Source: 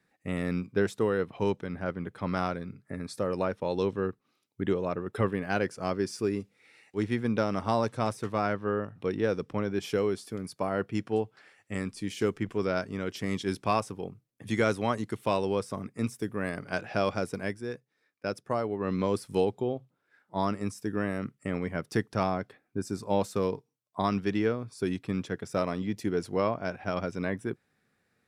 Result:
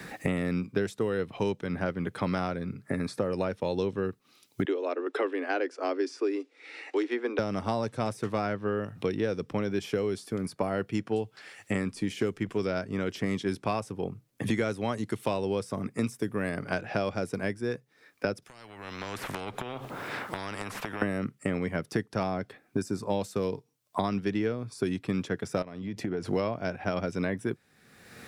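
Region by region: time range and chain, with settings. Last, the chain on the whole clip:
4.65–7.39 steep high-pass 270 Hz 96 dB/oct + air absorption 100 m
18.42–21.02 compressor 8:1, threshold -43 dBFS + spectral compressor 4:1
25.62–26.28 high shelf 7700 Hz -10.5 dB + compressor 8:1, threshold -38 dBFS
whole clip: dynamic EQ 1100 Hz, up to -4 dB, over -41 dBFS, Q 1.8; three-band squash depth 100%

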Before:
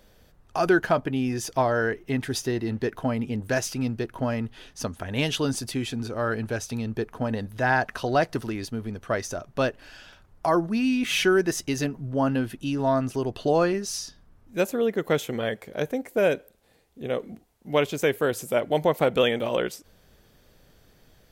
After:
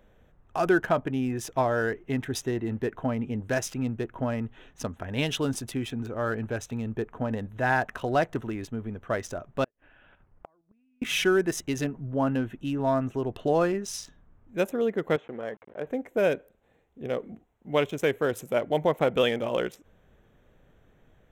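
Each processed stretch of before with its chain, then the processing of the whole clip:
9.64–11.02 LPF 3100 Hz 24 dB/oct + level quantiser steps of 9 dB + flipped gate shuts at -25 dBFS, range -38 dB
15.16–15.87 level-crossing sampler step -39.5 dBFS + HPF 420 Hz 6 dB/oct + tape spacing loss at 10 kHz 34 dB
whole clip: Wiener smoothing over 9 samples; high shelf 11000 Hz +3 dB; notch 4500 Hz, Q 8.2; gain -2 dB

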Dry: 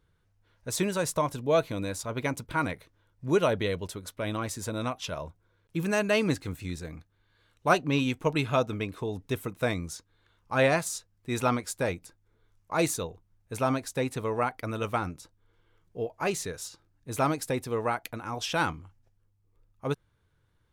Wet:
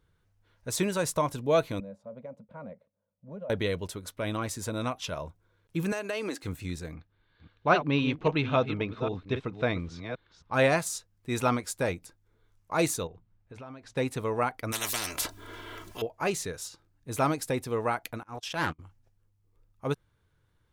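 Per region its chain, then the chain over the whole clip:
1.8–3.5 double band-pass 340 Hz, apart 1.4 oct + compressor 4:1, threshold -37 dBFS
5.92–6.43 HPF 270 Hz 24 dB/oct + compressor, threshold -28 dBFS
6.94–10.54 reverse delay 0.268 s, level -9 dB + LPF 4400 Hz 24 dB/oct
13.07–13.97 LPF 3500 Hz + de-hum 57.58 Hz, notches 4 + compressor 4:1, threshold -44 dBFS
14.72–16.02 comb 3 ms, depth 77% + spectral compressor 10:1
18.23–18.79 gate -35 dBFS, range -31 dB + transient shaper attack -9 dB, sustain +1 dB + Doppler distortion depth 0.36 ms
whole clip: dry

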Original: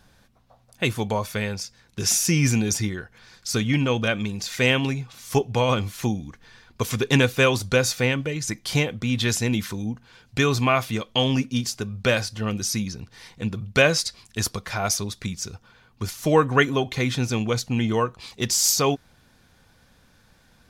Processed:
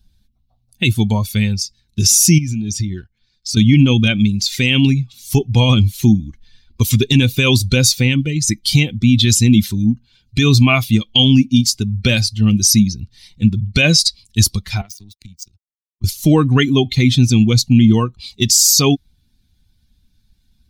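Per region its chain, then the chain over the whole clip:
2.38–3.57 G.711 law mismatch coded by A + high shelf 9300 Hz -11.5 dB + compressor 20:1, threshold -27 dBFS
14.81–16.04 compressor 20:1, threshold -29 dBFS + power-law curve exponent 2 + three-band expander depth 100%
whole clip: per-bin expansion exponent 1.5; band shelf 890 Hz -14 dB 2.5 oct; maximiser +19 dB; gain -1 dB

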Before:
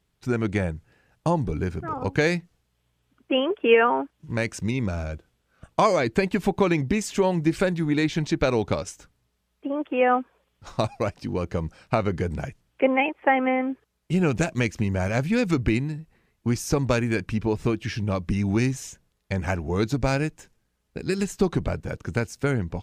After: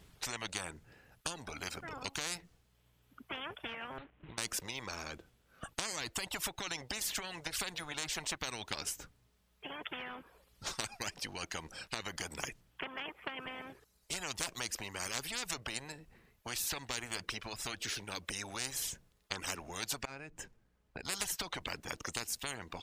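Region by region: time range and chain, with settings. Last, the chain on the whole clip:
3.98–4.38 CVSD 16 kbps + low shelf 390 Hz +5 dB + compressor 12:1, threshold -32 dBFS
20.05–21.05 high shelf 3100 Hz -11 dB + compressor 2.5:1, threshold -41 dBFS
whole clip: reverb removal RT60 1.9 s; compressor, threshold -22 dBFS; spectral compressor 10:1; gain -7 dB

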